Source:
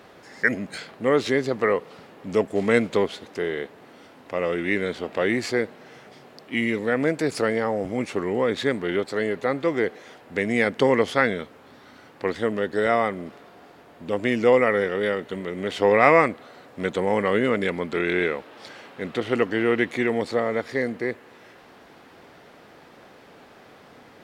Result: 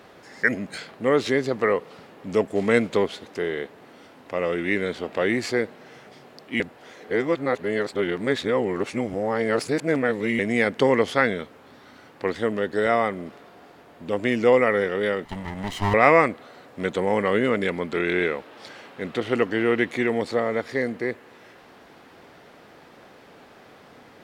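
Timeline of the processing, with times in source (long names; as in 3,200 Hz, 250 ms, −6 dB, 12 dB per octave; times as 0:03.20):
0:06.60–0:10.39: reverse
0:15.25–0:15.94: lower of the sound and its delayed copy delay 1 ms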